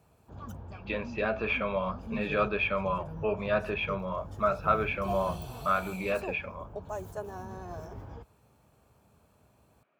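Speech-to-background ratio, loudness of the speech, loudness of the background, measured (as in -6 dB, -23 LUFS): 11.0 dB, -31.0 LUFS, -42.0 LUFS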